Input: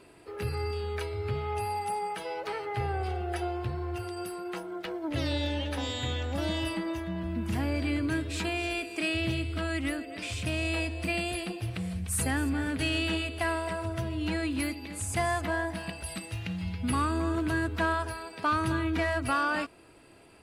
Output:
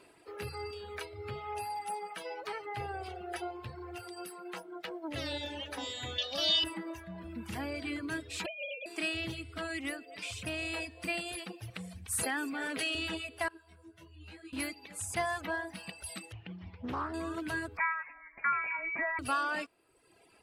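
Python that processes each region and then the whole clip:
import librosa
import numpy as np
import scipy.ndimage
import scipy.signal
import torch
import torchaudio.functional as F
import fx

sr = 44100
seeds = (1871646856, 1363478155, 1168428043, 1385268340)

y = fx.chain(x, sr, fx.highpass(hz=190.0, slope=6),
    fx.band_shelf(hz=4100.0, db=14.5, octaves=1.3),
    fx.comb(ms=1.7, depth=0.42), at=(6.18, 6.64))
y = fx.chain(y, sr, fx.sine_speech(),
    fx.over_compress(threshold_db=-35.0, ratio=-0.5), at=(8.46, 8.86))
y = fx.chain(y, sr, fx.highpass(hz=290.0, slope=12),
    fx.quant_float(bits=6),
    fx.env_flatten(amount_pct=100), at=(12.23, 12.95))
y = fx.chain(y, sr, fx.stiff_resonator(f0_hz=82.0, decay_s=0.33, stiffness=0.002),
    fx.detune_double(cents=32), at=(13.48, 14.53))
y = fx.chain(y, sr, fx.spacing_loss(db_at_10k=29),
    fx.doppler_dist(depth_ms=0.46), at=(16.32, 17.14))
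y = fx.chain(y, sr, fx.highpass(hz=250.0, slope=12),
    fx.freq_invert(carrier_hz=2600), at=(17.77, 19.19))
y = fx.dereverb_blind(y, sr, rt60_s=1.1)
y = fx.low_shelf(y, sr, hz=220.0, db=-10.5)
y = y * librosa.db_to_amplitude(-2.0)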